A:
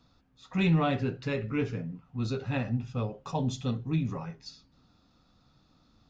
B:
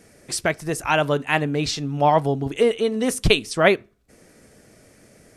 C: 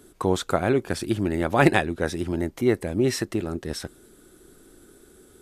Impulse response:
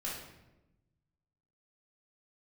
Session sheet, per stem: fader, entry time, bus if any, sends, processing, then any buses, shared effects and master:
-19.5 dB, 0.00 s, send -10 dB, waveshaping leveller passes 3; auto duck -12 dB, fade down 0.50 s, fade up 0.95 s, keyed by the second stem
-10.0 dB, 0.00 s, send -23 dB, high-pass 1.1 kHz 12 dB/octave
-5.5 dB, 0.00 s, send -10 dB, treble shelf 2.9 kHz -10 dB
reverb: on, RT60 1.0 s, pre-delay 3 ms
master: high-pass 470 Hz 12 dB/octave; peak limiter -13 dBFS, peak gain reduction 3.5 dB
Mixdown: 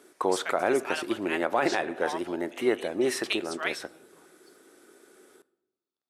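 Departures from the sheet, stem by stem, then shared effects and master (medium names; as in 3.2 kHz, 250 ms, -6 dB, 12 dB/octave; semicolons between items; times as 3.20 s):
stem A: send -10 dB -> -19 dB; stem C -5.5 dB -> +2.0 dB; reverb return -7.0 dB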